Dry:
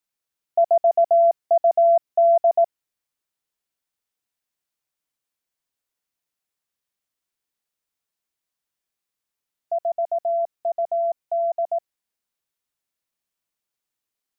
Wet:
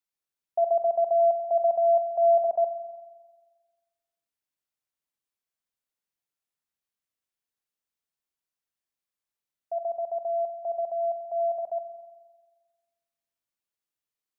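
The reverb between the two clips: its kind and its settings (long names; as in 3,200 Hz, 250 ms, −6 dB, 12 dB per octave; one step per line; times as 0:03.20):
spring reverb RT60 1.4 s, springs 44 ms, chirp 55 ms, DRR 6.5 dB
level −7 dB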